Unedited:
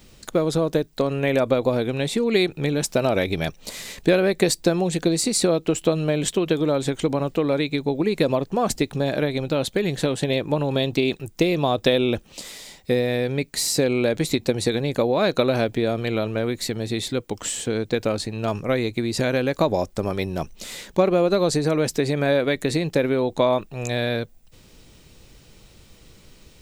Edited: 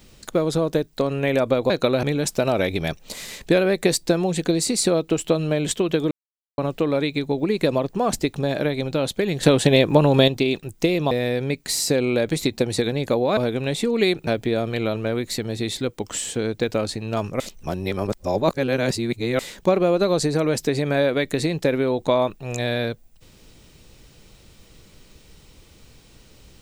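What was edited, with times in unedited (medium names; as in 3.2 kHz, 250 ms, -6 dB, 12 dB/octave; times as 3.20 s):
1.70–2.60 s: swap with 15.25–15.58 s
6.68–7.15 s: mute
10.00–10.85 s: gain +7 dB
11.68–12.99 s: delete
18.71–20.70 s: reverse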